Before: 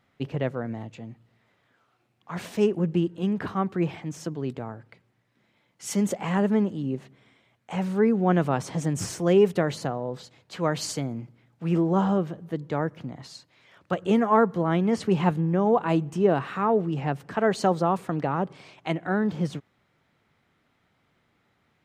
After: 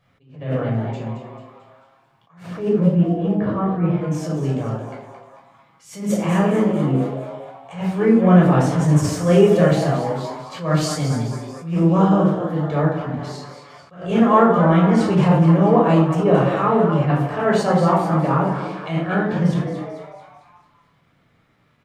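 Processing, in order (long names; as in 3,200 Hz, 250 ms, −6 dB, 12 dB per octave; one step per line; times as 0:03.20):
0:02.43–0:04.01: low-pass filter 1,000 Hz 6 dB per octave
echo with shifted repeats 221 ms, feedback 51%, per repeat +140 Hz, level −10 dB
rectangular room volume 980 cubic metres, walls furnished, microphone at 5.7 metres
level that may rise only so fast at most 120 dB per second
level −1 dB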